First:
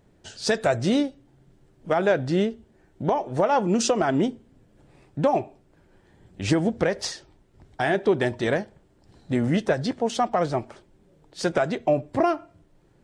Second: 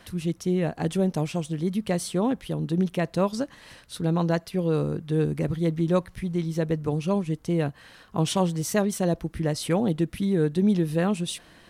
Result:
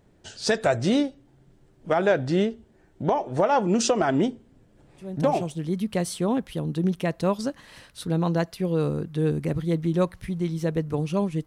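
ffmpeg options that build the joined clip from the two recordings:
-filter_complex "[0:a]apad=whole_dur=11.46,atrim=end=11.46,atrim=end=5.9,asetpts=PTS-STARTPTS[s0];[1:a]atrim=start=0.88:end=7.4,asetpts=PTS-STARTPTS[s1];[s0][s1]acrossfade=d=0.96:c1=qsin:c2=qsin"

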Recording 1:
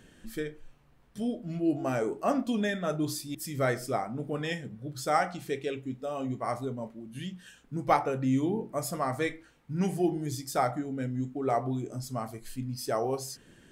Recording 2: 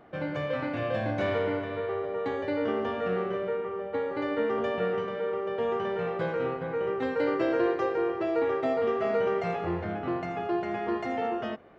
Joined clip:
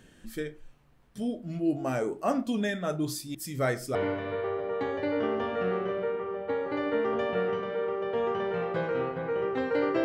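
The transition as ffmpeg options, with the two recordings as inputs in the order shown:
-filter_complex "[0:a]apad=whole_dur=10.04,atrim=end=10.04,atrim=end=3.952[s0];[1:a]atrim=start=1.398:end=7.49[s1];[s0][s1]acrossfade=d=0.004:c1=hsin:c2=hsin"

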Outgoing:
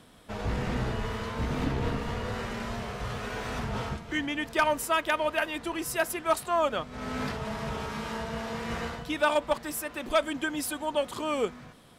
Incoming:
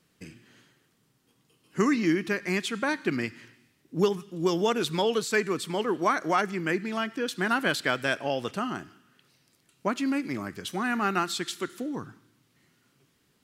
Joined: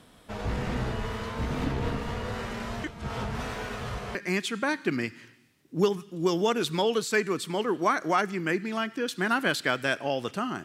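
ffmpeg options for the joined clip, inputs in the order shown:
-filter_complex "[0:a]apad=whole_dur=10.64,atrim=end=10.64,asplit=2[s0][s1];[s0]atrim=end=2.842[s2];[s1]atrim=start=2.838:end=4.152,asetpts=PTS-STARTPTS,areverse[s3];[1:a]atrim=start=2.348:end=8.84[s4];[s2][s3]acrossfade=d=0.004:c1=hsin:c2=hsin[s5];[s5][s4]acrossfade=d=0.004:c1=hsin:c2=hsin"

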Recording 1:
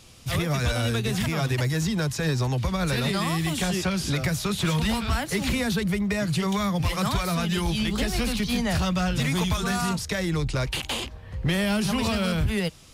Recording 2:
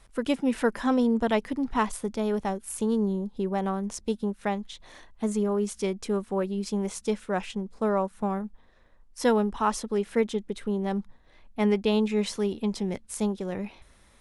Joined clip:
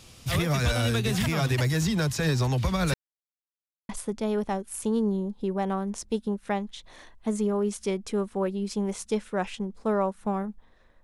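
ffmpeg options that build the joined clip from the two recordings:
-filter_complex "[0:a]apad=whole_dur=11.03,atrim=end=11.03,asplit=2[s0][s1];[s0]atrim=end=2.94,asetpts=PTS-STARTPTS,afade=t=out:st=2.936:d=0.004:c=hsin[s2];[s1]atrim=start=2.94:end=3.89,asetpts=PTS-STARTPTS,volume=0[s3];[1:a]atrim=start=1.85:end=8.99,asetpts=PTS-STARTPTS,afade=t=in:d=0.004:c=hsin[s4];[s2][s3][s4]concat=n=3:v=0:a=1"

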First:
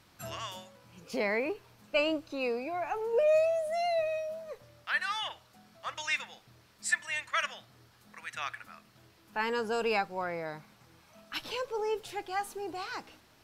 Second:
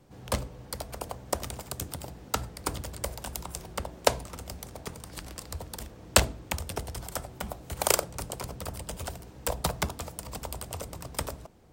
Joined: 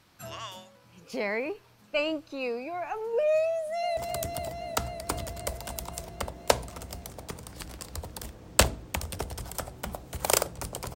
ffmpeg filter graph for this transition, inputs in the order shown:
-filter_complex "[0:a]apad=whole_dur=10.95,atrim=end=10.95,atrim=end=3.972[s0];[1:a]atrim=start=1.538:end=8.52[s1];[s0][s1]acrossfade=d=0.004:c1=hsin:c2=hsin,asplit=2[s2][s3];[s3]afade=t=in:st=3.56:d=0.01,afade=t=out:st=3.97:d=0.01,aecho=0:1:260|520|780|1040|1300|1560|1820|2080|2340|2600|2860|3120:0.562341|0.449873|0.359898|0.287919|0.230335|0.184268|0.147414|0.117932|0.0943452|0.0754762|0.0603809|0.0483048[s4];[s2][s4]amix=inputs=2:normalize=0"

